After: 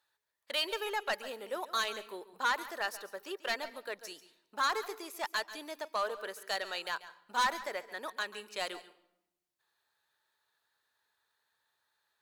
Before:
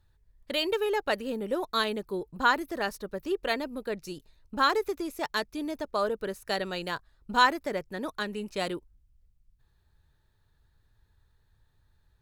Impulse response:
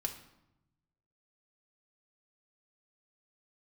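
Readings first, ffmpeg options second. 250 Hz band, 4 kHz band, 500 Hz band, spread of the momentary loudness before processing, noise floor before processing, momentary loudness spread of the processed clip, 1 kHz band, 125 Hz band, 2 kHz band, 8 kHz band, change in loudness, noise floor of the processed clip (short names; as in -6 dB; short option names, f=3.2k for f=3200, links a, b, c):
-16.0 dB, -3.5 dB, -9.0 dB, 11 LU, -69 dBFS, 11 LU, -6.0 dB, under -20 dB, -4.5 dB, +1.5 dB, -6.0 dB, -85 dBFS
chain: -filter_complex "[0:a]highpass=760,asoftclip=type=tanh:threshold=-24dB,asplit=2[a][b];[1:a]atrim=start_sample=2205,adelay=138[c];[b][c]afir=irnorm=-1:irlink=0,volume=-15dB[d];[a][d]amix=inputs=2:normalize=0"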